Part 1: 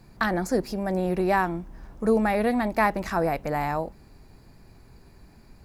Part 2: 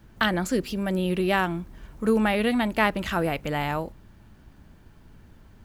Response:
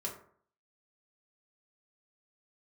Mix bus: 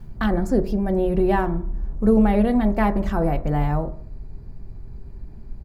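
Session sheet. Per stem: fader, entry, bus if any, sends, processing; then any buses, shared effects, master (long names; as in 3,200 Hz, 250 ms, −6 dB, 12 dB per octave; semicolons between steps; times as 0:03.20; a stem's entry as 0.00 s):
−5.0 dB, 0.00 s, send −5.5 dB, spectral tilt −4 dB per octave
−0.5 dB, 3.9 ms, no send, reverb reduction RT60 2 s; automatic ducking −12 dB, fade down 0.20 s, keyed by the first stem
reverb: on, RT60 0.55 s, pre-delay 3 ms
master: high-shelf EQ 6,500 Hz +4.5 dB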